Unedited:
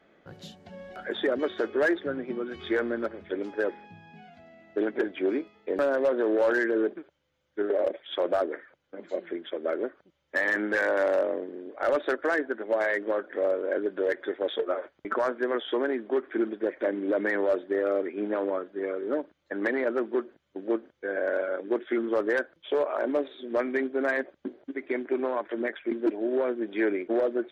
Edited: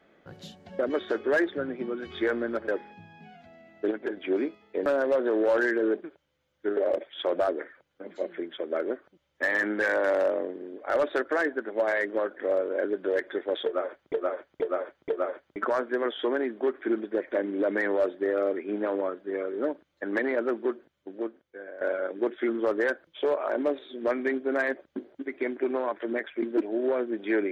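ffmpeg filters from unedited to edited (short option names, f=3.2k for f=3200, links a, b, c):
-filter_complex "[0:a]asplit=9[a][b][c][d][e][f][g][h][i];[a]atrim=end=0.792[j];[b]atrim=start=1.278:end=3.172[k];[c]atrim=start=3.608:end=4.842[l];[d]atrim=start=4.838:end=5.102,asetpts=PTS-STARTPTS,volume=-4.5dB[m];[e]atrim=start=5.098:end=15.062[n];[f]atrim=start=14.578:end=15.062[o];[g]atrim=start=14.578:end=15.062[p];[h]atrim=start=14.578:end=21.3,asetpts=PTS-STARTPTS,afade=t=out:st=5.502:d=1.22:silence=0.149624[q];[i]atrim=start=21.3,asetpts=PTS-STARTPTS,afade=t=in:d=0.004:c=hsin:silence=0.149624[r];[j][k]acrossfade=d=0.004:c1=hsin:c2=hsin[s];[s][l]acrossfade=d=0.004:c1=hsin:c2=hsin[t];[t][m]acrossfade=d=0.004:c1=hsin:c2=hsin[u];[u][n]acrossfade=d=0.004:c1=hsin:c2=hsin[v];[v][o]acrossfade=d=0.004:c1=hsin:c2=hsin[w];[w][p]acrossfade=d=0.004:c1=hsin:c2=hsin[x];[q][r]concat=n=2:v=0:a=1[y];[x][y]acrossfade=d=0.004:c1=hsin:c2=hsin"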